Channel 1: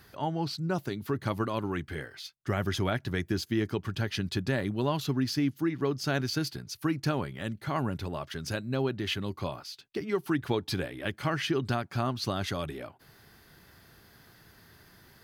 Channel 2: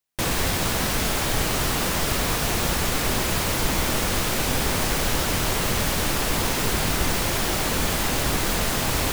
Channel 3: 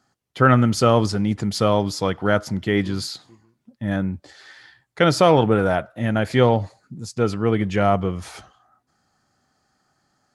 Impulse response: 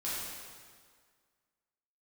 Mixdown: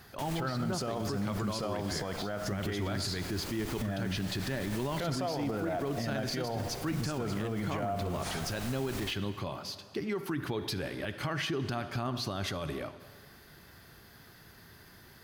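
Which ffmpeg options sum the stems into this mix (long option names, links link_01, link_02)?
-filter_complex "[0:a]volume=1dB,asplit=2[link_01][link_02];[link_02]volume=-16dB[link_03];[1:a]volume=-16.5dB,asplit=2[link_04][link_05];[link_05]volume=-18.5dB[link_06];[2:a]equalizer=frequency=690:width_type=o:width=0.28:gain=8.5,acompressor=threshold=-26dB:ratio=3,volume=0dB,asplit=3[link_07][link_08][link_09];[link_08]volume=-14dB[link_10];[link_09]apad=whole_len=402263[link_11];[link_04][link_11]sidechaincompress=threshold=-33dB:ratio=3:attack=16:release=818[link_12];[3:a]atrim=start_sample=2205[link_13];[link_03][link_06][link_10]amix=inputs=3:normalize=0[link_14];[link_14][link_13]afir=irnorm=-1:irlink=0[link_15];[link_01][link_12][link_07][link_15]amix=inputs=4:normalize=0,alimiter=level_in=1dB:limit=-24dB:level=0:latency=1:release=45,volume=-1dB"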